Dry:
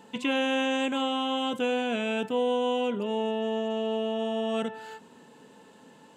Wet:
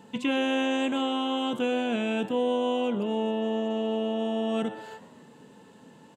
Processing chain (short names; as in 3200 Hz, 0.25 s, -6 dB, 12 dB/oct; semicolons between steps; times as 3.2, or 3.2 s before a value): bell 110 Hz +8.5 dB 2.2 oct; frequency-shifting echo 0.124 s, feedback 49%, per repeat +99 Hz, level -17.5 dB; gain -1.5 dB